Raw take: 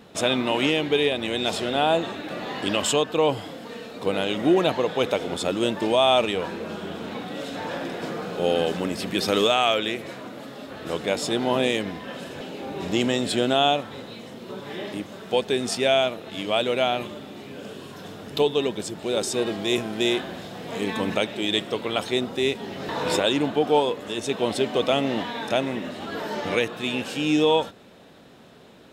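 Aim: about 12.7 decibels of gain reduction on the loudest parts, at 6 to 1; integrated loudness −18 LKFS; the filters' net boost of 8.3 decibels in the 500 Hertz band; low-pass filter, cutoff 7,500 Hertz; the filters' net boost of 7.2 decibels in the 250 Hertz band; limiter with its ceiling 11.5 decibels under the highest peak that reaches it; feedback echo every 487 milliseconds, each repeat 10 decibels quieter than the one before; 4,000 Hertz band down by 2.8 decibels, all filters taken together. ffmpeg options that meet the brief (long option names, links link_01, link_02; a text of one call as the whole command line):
ffmpeg -i in.wav -af "lowpass=7500,equalizer=frequency=250:width_type=o:gain=6,equalizer=frequency=500:width_type=o:gain=8.5,equalizer=frequency=4000:width_type=o:gain=-3.5,acompressor=threshold=-22dB:ratio=6,alimiter=limit=-22dB:level=0:latency=1,aecho=1:1:487|974|1461|1948:0.316|0.101|0.0324|0.0104,volume=12.5dB" out.wav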